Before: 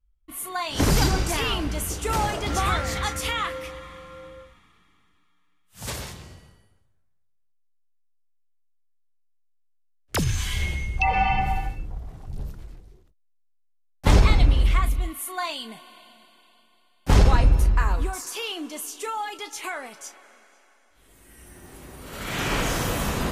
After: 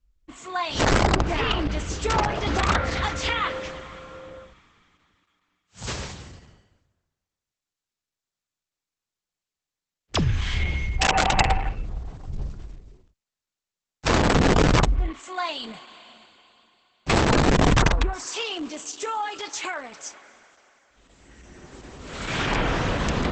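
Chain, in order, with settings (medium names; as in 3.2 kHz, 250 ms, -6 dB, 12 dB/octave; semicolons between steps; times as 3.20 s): low-pass that closes with the level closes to 590 Hz, closed at -15 dBFS; integer overflow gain 15 dB; trim +2 dB; Opus 10 kbps 48 kHz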